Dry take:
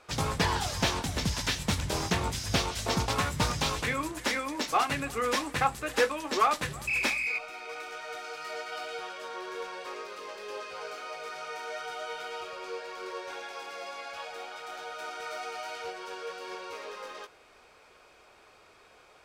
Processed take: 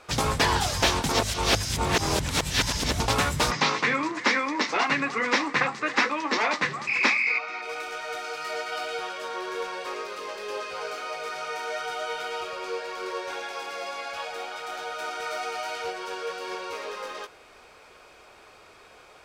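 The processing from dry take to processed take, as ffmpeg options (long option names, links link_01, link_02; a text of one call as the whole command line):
ffmpeg -i in.wav -filter_complex "[0:a]asplit=3[link_01][link_02][link_03];[link_01]afade=type=out:start_time=3.5:duration=0.02[link_04];[link_02]highpass=frequency=170:width=0.5412,highpass=frequency=170:width=1.3066,equalizer=frequency=610:width_type=q:width=4:gain=-4,equalizer=frequency=1100:width_type=q:width=4:gain=7,equalizer=frequency=2000:width_type=q:width=4:gain=8,equalizer=frequency=3200:width_type=q:width=4:gain=-4,lowpass=frequency=5800:width=0.5412,lowpass=frequency=5800:width=1.3066,afade=type=in:start_time=3.5:duration=0.02,afade=type=out:start_time=7.61:duration=0.02[link_05];[link_03]afade=type=in:start_time=7.61:duration=0.02[link_06];[link_04][link_05][link_06]amix=inputs=3:normalize=0,asplit=3[link_07][link_08][link_09];[link_07]atrim=end=1.092[link_10];[link_08]atrim=start=1.088:end=3.002,asetpts=PTS-STARTPTS,areverse[link_11];[link_09]atrim=start=2.998[link_12];[link_10][link_11]acrossfade=duration=0.004:curve1=hsin:curve2=hsin[link_13];[link_13][link_12]acrossfade=duration=0.004:curve1=hsin:curve2=hsin,afftfilt=real='re*lt(hypot(re,im),0.282)':imag='im*lt(hypot(re,im),0.282)':win_size=1024:overlap=0.75,volume=6dB" out.wav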